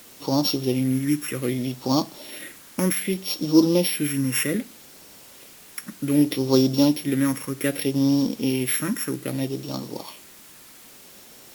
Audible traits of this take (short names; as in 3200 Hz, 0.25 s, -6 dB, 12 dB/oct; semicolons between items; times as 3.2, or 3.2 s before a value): a buzz of ramps at a fixed pitch in blocks of 8 samples; phasing stages 4, 0.64 Hz, lowest notch 710–1900 Hz; a quantiser's noise floor 8-bit, dither triangular; Vorbis